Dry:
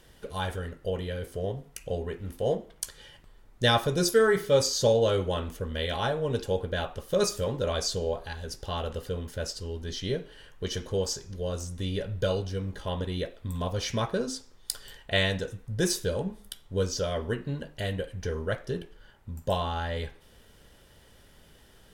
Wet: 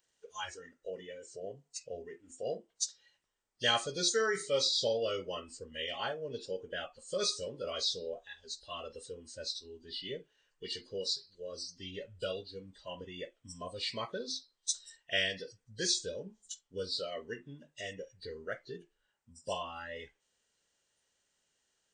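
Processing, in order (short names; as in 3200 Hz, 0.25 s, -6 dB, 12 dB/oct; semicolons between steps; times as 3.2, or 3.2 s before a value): nonlinear frequency compression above 2600 Hz 1.5:1; RIAA curve recording; spectral noise reduction 16 dB; gain -7 dB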